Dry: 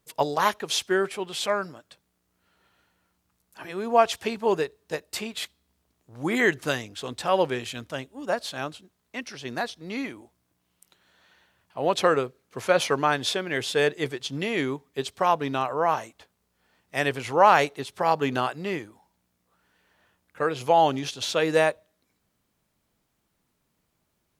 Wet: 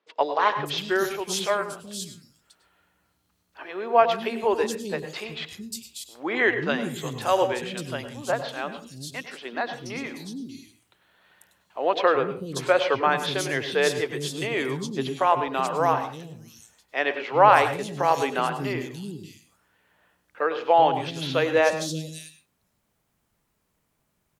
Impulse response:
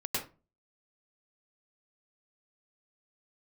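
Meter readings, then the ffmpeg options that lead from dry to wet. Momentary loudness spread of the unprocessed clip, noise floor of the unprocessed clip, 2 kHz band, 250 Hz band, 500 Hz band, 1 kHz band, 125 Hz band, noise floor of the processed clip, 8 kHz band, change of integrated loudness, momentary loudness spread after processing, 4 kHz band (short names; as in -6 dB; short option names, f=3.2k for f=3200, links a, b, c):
13 LU, -75 dBFS, +1.5 dB, 0.0 dB, +1.0 dB, +2.0 dB, +1.5 dB, -73 dBFS, +0.5 dB, +1.0 dB, 15 LU, -0.5 dB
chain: -filter_complex "[0:a]acrossover=split=280|4200[a][b][c];[a]adelay=380[d];[c]adelay=590[e];[d][b][e]amix=inputs=3:normalize=0,asplit=2[f][g];[1:a]atrim=start_sample=2205[h];[g][h]afir=irnorm=-1:irlink=0,volume=-12.5dB[i];[f][i]amix=inputs=2:normalize=0"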